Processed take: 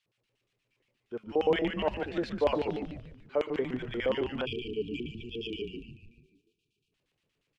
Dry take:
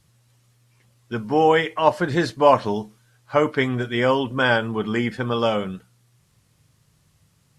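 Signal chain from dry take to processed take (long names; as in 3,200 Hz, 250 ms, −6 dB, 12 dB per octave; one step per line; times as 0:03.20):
auto-filter band-pass square 8.5 Hz 440–2,700 Hz
echo with shifted repeats 146 ms, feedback 49%, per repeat −140 Hz, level −6 dB
time-frequency box erased 0:04.45–0:06.93, 470–2,300 Hz
level −5 dB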